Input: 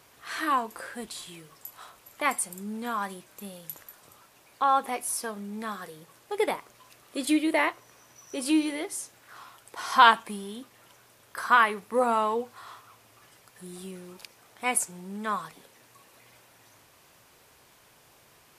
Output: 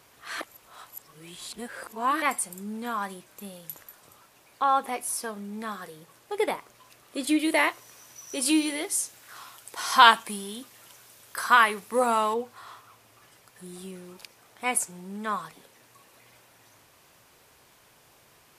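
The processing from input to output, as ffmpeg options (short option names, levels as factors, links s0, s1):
-filter_complex "[0:a]asettb=1/sr,asplit=3[s0][s1][s2];[s0]atrim=end=7.394[s3];[s1]atrim=start=7.39:end=12.34,asetpts=PTS-STARTPTS,afade=t=in:d=0.004:c=qsin,afade=t=out:st=4.946:d=0.004:c=qsin,highshelf=f=2900:g=9[s4];[s2]atrim=start=12.336[s5];[s3][s4]acrossfade=d=0.004:c1=hsin:c2=qsin[s6];[s6][s5]acrossfade=d=0.004:c1=qsin:c2=hsin,asplit=3[s7][s8][s9];[s7]atrim=end=0.412[s10];[s8]atrim=start=0.408:end=2.222,asetpts=PTS-STARTPTS,areverse[s11];[s9]atrim=start=2.218[s12];[s10][s11]acrossfade=d=0.004:c1=hsin:c2=hsin[s13];[s13][s12]acrossfade=d=0.004:c1=hsin:c2=hsin"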